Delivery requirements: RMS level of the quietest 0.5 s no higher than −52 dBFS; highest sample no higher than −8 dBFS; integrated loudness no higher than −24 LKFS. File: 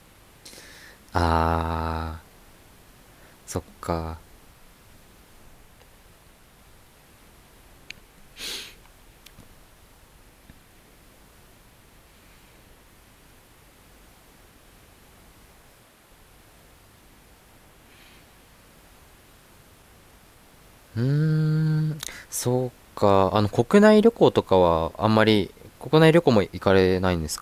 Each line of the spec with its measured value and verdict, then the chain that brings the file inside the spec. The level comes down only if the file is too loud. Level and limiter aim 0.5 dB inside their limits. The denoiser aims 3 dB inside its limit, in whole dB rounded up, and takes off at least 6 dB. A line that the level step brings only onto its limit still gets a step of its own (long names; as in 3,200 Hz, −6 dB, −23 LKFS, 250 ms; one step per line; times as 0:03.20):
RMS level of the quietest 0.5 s −54 dBFS: in spec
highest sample −5.0 dBFS: out of spec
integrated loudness −22.0 LKFS: out of spec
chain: level −2.5 dB
brickwall limiter −8.5 dBFS